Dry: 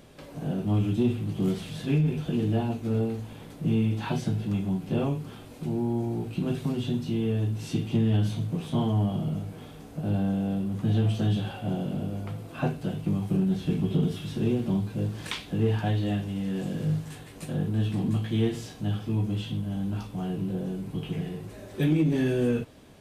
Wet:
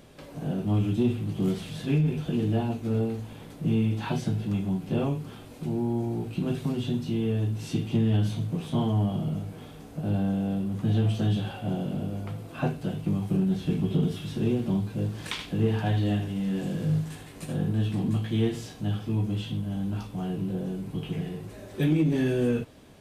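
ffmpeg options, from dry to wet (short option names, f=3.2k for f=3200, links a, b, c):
-filter_complex "[0:a]asettb=1/sr,asplit=3[a][b][c];[a]atrim=end=15.314[d];[b]atrim=start=15.31:end=17.73,asetpts=PTS-STARTPTS,afade=t=in:d=0.004:c=qsin,afade=t=out:st=2.416:d=0.004:c=qsin,aecho=1:1:77:0.398,atrim=end_sample=106722[e];[c]atrim=start=17.726[f];[d][e]acrossfade=d=0.004:c1=hsin:c2=qsin[g];[g][f]acrossfade=d=0.004:c1=qsin:c2=hsin"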